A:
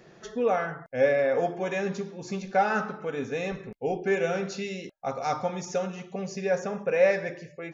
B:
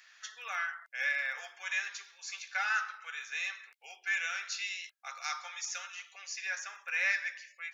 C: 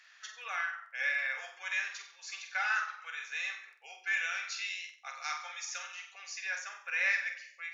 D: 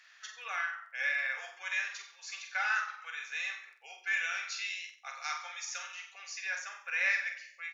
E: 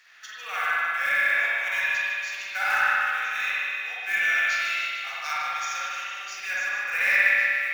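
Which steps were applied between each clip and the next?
HPF 1500 Hz 24 dB/oct; gain +3 dB
high shelf 8800 Hz -11 dB; on a send: flutter echo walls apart 8 m, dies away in 0.39 s
doubler 38 ms -14 dB
short-mantissa float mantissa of 2-bit; thinning echo 0.151 s, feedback 67%, high-pass 610 Hz, level -8 dB; spring tank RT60 2.1 s, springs 57 ms, chirp 55 ms, DRR -7 dB; gain +2.5 dB

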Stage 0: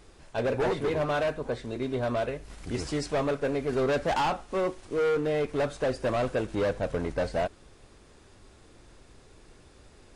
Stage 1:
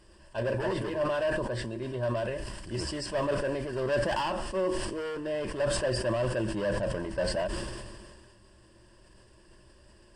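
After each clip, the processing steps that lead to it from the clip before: ripple EQ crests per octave 1.3, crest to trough 12 dB; sustainer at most 31 dB/s; gain -5.5 dB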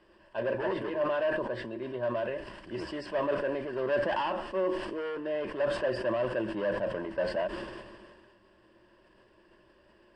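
three-band isolator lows -14 dB, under 200 Hz, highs -22 dB, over 3600 Hz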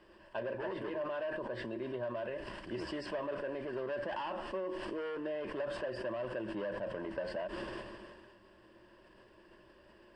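compressor 5:1, threshold -37 dBFS, peak gain reduction 12.5 dB; gain +1 dB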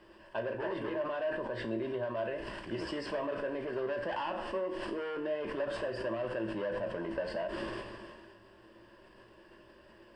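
resonator 56 Hz, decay 0.38 s, harmonics all, mix 70%; gain +8.5 dB

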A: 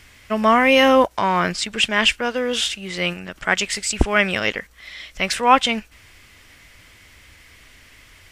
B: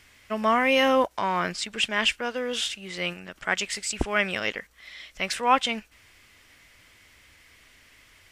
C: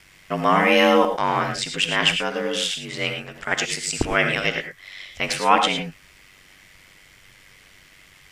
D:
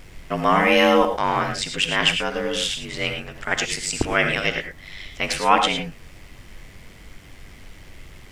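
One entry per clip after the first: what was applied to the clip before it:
low shelf 150 Hz -6 dB; gain -6.5 dB
ring modulator 48 Hz; non-linear reverb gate 0.13 s rising, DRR 5.5 dB; gain +6.5 dB
added noise brown -41 dBFS

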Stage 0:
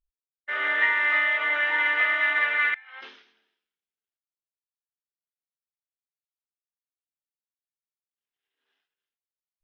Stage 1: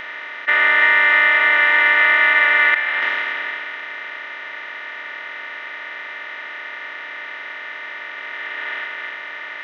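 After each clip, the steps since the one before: per-bin compression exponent 0.2; gain +4 dB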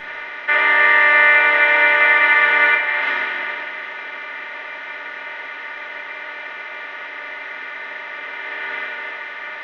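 reverb RT60 0.60 s, pre-delay 5 ms, DRR -6 dB; gain -7 dB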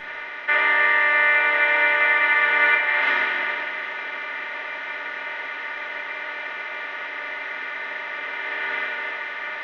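vocal rider within 3 dB 0.5 s; gain -3 dB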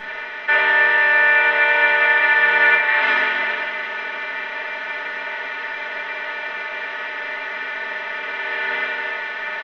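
comb 4.6 ms, depth 96%; gain +1.5 dB

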